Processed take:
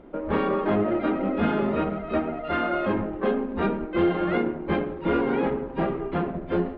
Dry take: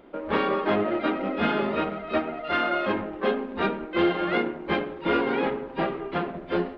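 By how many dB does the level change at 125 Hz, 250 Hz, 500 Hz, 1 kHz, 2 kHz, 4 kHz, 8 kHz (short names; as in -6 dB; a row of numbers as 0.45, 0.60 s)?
+5.5 dB, +3.0 dB, +1.0 dB, -1.5 dB, -3.5 dB, -7.0 dB, n/a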